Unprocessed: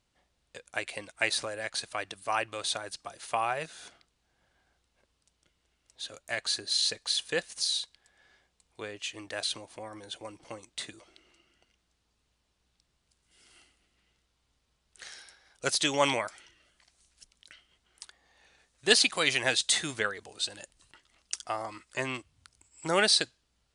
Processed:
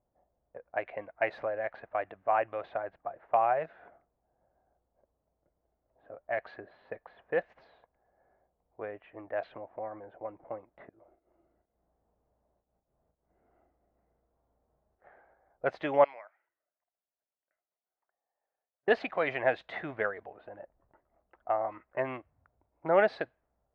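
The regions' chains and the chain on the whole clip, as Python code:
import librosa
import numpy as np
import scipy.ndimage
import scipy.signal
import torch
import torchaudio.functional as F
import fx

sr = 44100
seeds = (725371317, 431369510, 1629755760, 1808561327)

y = fx.chain(x, sr, fx.auto_swell(attack_ms=202.0),
    fx.doubler(ms=36.0, db=-5.5),
    fx.band_squash(depth_pct=40), at=(10.89, 15.04))
y = fx.chain(y, sr, fx.lowpass(hz=2600.0, slope=12),
    fx.differentiator(),
    fx.resample_bad(factor=6, down='filtered', up='hold'), at=(16.04, 18.88))
y = scipy.signal.sosfilt(scipy.signal.cheby1(3, 1.0, 2000.0, 'lowpass', fs=sr, output='sos'), y)
y = fx.env_lowpass(y, sr, base_hz=770.0, full_db=-29.5)
y = fx.peak_eq(y, sr, hz=660.0, db=13.0, octaves=0.99)
y = y * 10.0 ** (-4.5 / 20.0)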